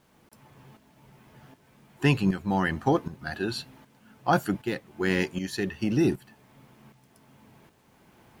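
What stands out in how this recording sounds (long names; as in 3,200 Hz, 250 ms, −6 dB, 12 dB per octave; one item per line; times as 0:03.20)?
tremolo saw up 1.3 Hz, depth 70%
a quantiser's noise floor 12 bits, dither none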